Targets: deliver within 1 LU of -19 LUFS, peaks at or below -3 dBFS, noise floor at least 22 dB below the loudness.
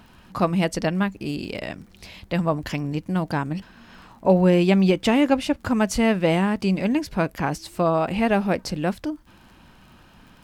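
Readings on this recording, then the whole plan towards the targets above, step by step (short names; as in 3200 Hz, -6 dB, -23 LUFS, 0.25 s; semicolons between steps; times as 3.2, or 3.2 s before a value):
ticks 31/s; loudness -22.5 LUFS; peak -5.0 dBFS; loudness target -19.0 LUFS
-> de-click; gain +3.5 dB; limiter -3 dBFS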